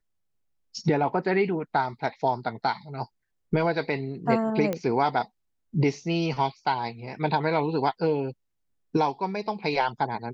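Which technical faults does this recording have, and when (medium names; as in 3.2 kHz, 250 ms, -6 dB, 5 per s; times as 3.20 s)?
4.73 s: pop -15 dBFS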